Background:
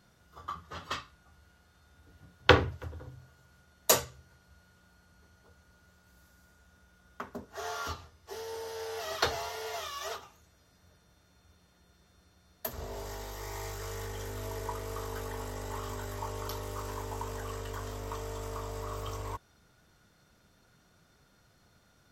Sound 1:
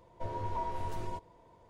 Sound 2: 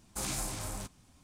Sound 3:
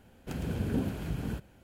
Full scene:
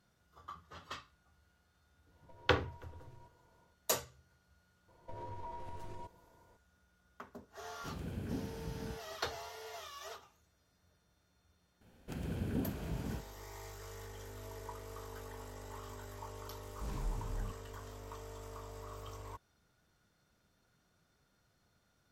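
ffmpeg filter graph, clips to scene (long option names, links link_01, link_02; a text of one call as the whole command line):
ffmpeg -i bed.wav -i cue0.wav -i cue1.wav -i cue2.wav -filter_complex "[1:a]asplit=2[link_01][link_02];[3:a]asplit=2[link_03][link_04];[0:a]volume=-9.5dB[link_05];[link_01]acompressor=threshold=-45dB:ratio=6:attack=3.2:release=140:knee=1:detection=peak[link_06];[link_02]acompressor=threshold=-35dB:ratio=6:attack=3.2:release=140:knee=1:detection=peak[link_07];[2:a]aemphasis=mode=reproduction:type=riaa[link_08];[link_06]atrim=end=1.69,asetpts=PTS-STARTPTS,volume=-9.5dB,afade=type=in:duration=0.1,afade=type=out:start_time=1.59:duration=0.1,adelay=2090[link_09];[link_07]atrim=end=1.69,asetpts=PTS-STARTPTS,volume=-5.5dB,afade=type=in:duration=0.004:curve=hsin,afade=type=out:start_time=1.686:duration=0.004:curve=hsin,adelay=4880[link_10];[link_03]atrim=end=1.63,asetpts=PTS-STARTPTS,volume=-9.5dB,afade=type=in:duration=0.004:curve=hsin,afade=type=out:start_time=1.626:duration=0.004:curve=hsin,adelay=7570[link_11];[link_04]atrim=end=1.63,asetpts=PTS-STARTPTS,volume=-6dB,afade=type=in:duration=0.004:curve=hsin,afade=type=out:start_time=1.626:duration=0.004:curve=hsin,adelay=11810[link_12];[link_08]atrim=end=1.23,asetpts=PTS-STARTPTS,volume=-13.5dB,afade=type=in:duration=0.004:curve=hsin,afade=type=out:start_time=1.226:duration=0.004:curve=hsin,adelay=16650[link_13];[link_05][link_09][link_10][link_11][link_12][link_13]amix=inputs=6:normalize=0" out.wav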